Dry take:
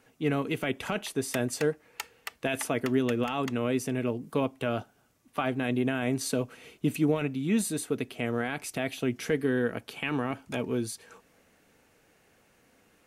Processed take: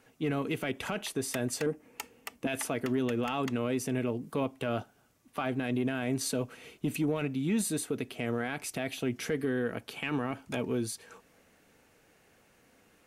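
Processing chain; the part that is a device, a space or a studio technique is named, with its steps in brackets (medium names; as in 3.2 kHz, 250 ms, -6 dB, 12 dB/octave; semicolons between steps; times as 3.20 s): 1.66–2.47 s: fifteen-band graphic EQ 250 Hz +12 dB, 1.6 kHz -7 dB, 4 kHz -7 dB; soft clipper into limiter (saturation -14.5 dBFS, distortion -25 dB; peak limiter -22 dBFS, peak gain reduction 6 dB)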